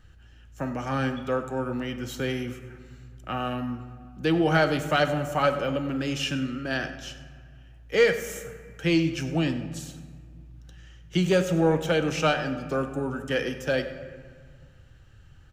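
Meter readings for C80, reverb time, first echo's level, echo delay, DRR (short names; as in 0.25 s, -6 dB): 11.0 dB, 1.9 s, -17.0 dB, 98 ms, 8.0 dB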